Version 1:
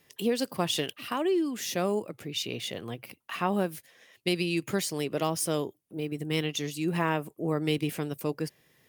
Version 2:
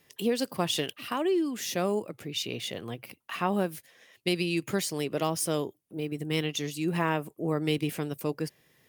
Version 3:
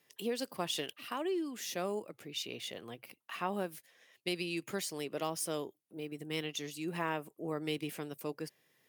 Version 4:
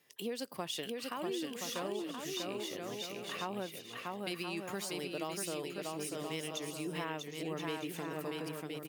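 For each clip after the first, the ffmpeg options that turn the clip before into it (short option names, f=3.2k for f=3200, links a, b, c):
-af anull
-af "highpass=f=270:p=1,volume=-6.5dB"
-filter_complex "[0:a]asplit=2[a][b];[b]aecho=0:1:640|1024|1254|1393|1476:0.631|0.398|0.251|0.158|0.1[c];[a][c]amix=inputs=2:normalize=0,acompressor=threshold=-39dB:ratio=2,volume=1dB"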